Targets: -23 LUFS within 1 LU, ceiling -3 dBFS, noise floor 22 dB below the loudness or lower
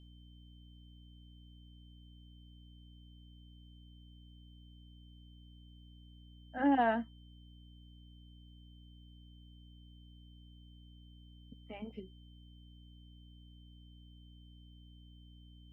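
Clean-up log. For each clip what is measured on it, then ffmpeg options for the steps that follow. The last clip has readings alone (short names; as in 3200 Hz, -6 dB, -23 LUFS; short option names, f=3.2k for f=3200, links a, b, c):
hum 60 Hz; harmonics up to 300 Hz; hum level -54 dBFS; steady tone 3100 Hz; tone level -66 dBFS; loudness -34.5 LUFS; peak -18.0 dBFS; loudness target -23.0 LUFS
-> -af "bandreject=f=60:t=h:w=4,bandreject=f=120:t=h:w=4,bandreject=f=180:t=h:w=4,bandreject=f=240:t=h:w=4,bandreject=f=300:t=h:w=4"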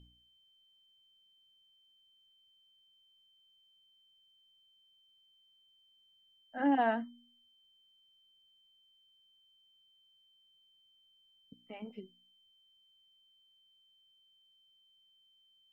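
hum none; steady tone 3100 Hz; tone level -66 dBFS
-> -af "bandreject=f=3.1k:w=30"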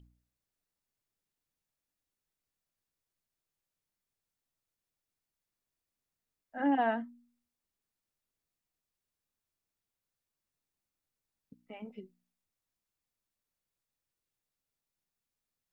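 steady tone none; loudness -31.5 LUFS; peak -18.5 dBFS; loudness target -23.0 LUFS
-> -af "volume=8.5dB"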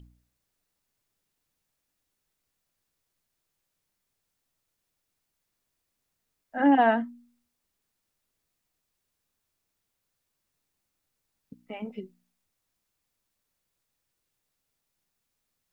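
loudness -23.0 LUFS; peak -10.0 dBFS; noise floor -81 dBFS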